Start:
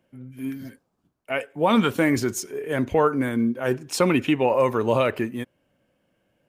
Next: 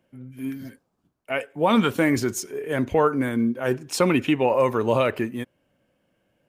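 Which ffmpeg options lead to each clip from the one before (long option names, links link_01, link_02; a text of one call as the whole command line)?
ffmpeg -i in.wav -af anull out.wav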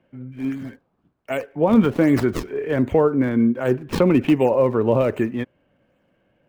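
ffmpeg -i in.wav -filter_complex "[0:a]acrossover=split=640|3500[link_01][link_02][link_03];[link_02]acompressor=threshold=-34dB:ratio=6[link_04];[link_03]acrusher=samples=40:mix=1:aa=0.000001:lfo=1:lforange=64:lforate=1.3[link_05];[link_01][link_04][link_05]amix=inputs=3:normalize=0,volume=5dB" out.wav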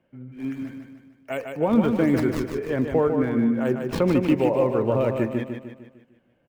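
ffmpeg -i in.wav -af "aecho=1:1:151|302|453|604|755|906:0.501|0.241|0.115|0.0554|0.0266|0.0128,volume=-4.5dB" out.wav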